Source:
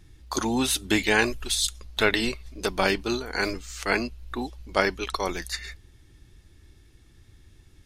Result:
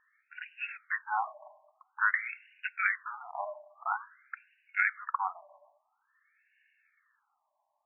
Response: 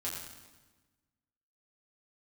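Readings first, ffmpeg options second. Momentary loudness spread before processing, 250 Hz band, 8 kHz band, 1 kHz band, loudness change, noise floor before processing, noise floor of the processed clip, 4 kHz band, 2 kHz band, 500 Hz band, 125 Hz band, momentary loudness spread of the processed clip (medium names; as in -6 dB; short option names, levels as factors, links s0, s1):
11 LU, under -40 dB, under -40 dB, -3.5 dB, -7.0 dB, -56 dBFS, -79 dBFS, under -30 dB, -4.5 dB, -21.5 dB, under -40 dB, 19 LU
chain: -filter_complex "[0:a]asplit=2[s0][s1];[s1]lowshelf=f=700:t=q:w=3:g=11[s2];[1:a]atrim=start_sample=2205[s3];[s2][s3]afir=irnorm=-1:irlink=0,volume=0.0891[s4];[s0][s4]amix=inputs=2:normalize=0,afftfilt=real='re*between(b*sr/1024,790*pow(2100/790,0.5+0.5*sin(2*PI*0.49*pts/sr))/1.41,790*pow(2100/790,0.5+0.5*sin(2*PI*0.49*pts/sr))*1.41)':imag='im*between(b*sr/1024,790*pow(2100/790,0.5+0.5*sin(2*PI*0.49*pts/sr))/1.41,790*pow(2100/790,0.5+0.5*sin(2*PI*0.49*pts/sr))*1.41)':win_size=1024:overlap=0.75"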